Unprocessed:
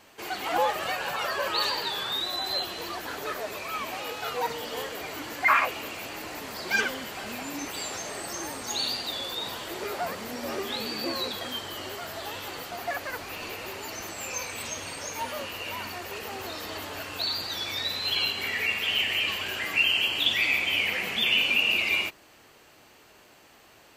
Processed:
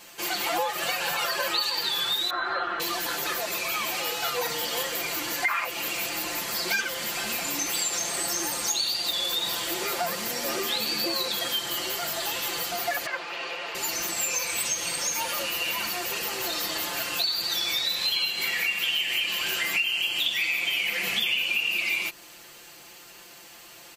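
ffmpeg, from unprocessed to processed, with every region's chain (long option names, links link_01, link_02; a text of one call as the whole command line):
ffmpeg -i in.wav -filter_complex "[0:a]asettb=1/sr,asplit=3[link_01][link_02][link_03];[link_01]atrim=end=2.304[link_04];[link_02]atrim=start=2.3:end=2.8,asetpts=PTS-STARTPTS,afade=type=in:duration=0.004:curve=qsin,afade=type=out:start_time=0.496:duration=0.004:curve=qsin,lowpass=frequency=1400:width_type=q:width=6.9,equalizer=frequency=160:width=1.8:gain=-7.5[link_05];[link_03]atrim=start=2.796[link_06];[link_04][link_05]acrossfade=duration=0.004:curve1=hsin:curve2=qsin[link_07];[link_07][link_06]acrossfade=duration=0.004:curve1=qsin:curve2=hsin,asettb=1/sr,asplit=3[link_08][link_09][link_10];[link_08]atrim=end=13.064[link_11];[link_09]atrim=start=13.06:end=13.75,asetpts=PTS-STARTPTS,afade=type=in:duration=0.004:curve=qsin,afade=type=out:start_time=0.686:duration=0.004:curve=qsin,afreqshift=63,highpass=380,lowpass=2900[link_12];[link_10]atrim=start=13.746[link_13];[link_11][link_12]acrossfade=duration=0.004:curve1=hsin:curve2=qsin[link_14];[link_14][link_13]acrossfade=duration=0.004:curve1=qsin:curve2=hsin,highshelf=frequency=2900:gain=11.5,aecho=1:1:5.8:0.85,acompressor=threshold=-24dB:ratio=6" out.wav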